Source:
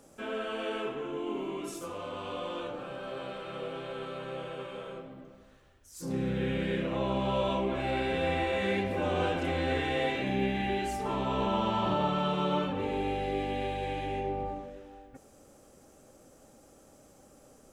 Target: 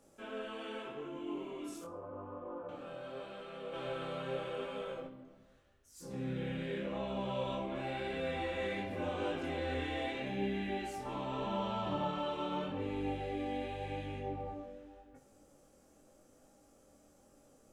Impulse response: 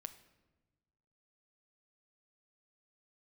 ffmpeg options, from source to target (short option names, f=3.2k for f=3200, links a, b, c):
-filter_complex "[0:a]asettb=1/sr,asplit=3[a][b][c];[a]atrim=end=1.844[d];[b]atrim=start=1.84:end=2.69,asetpts=PTS-STARTPTS,afade=t=in:d=0.004:c=qsin,afade=t=out:st=0.846:d=0.004:c=qsin,lowpass=f=1.3k:w=0.5412,lowpass=f=1.3k:w=1.3066[e];[c]atrim=start=2.686[f];[d][e]acrossfade=d=0.004:c1=hsin:c2=qsin[g];[g][f]acrossfade=d=0.004:c1=qsin:c2=hsin,asplit=3[h][i][j];[h]afade=t=out:st=3.72:d=0.02[k];[i]acontrast=68,afade=t=in:st=3.72:d=0.02,afade=t=out:st=5.06:d=0.02[l];[j]afade=t=in:st=5.06:d=0.02[m];[k][l][m]amix=inputs=3:normalize=0,flanger=delay=19.5:depth=4.6:speed=0.85[n];[1:a]atrim=start_sample=2205,asetrate=83790,aresample=44100[o];[n][o]afir=irnorm=-1:irlink=0,volume=5.5dB"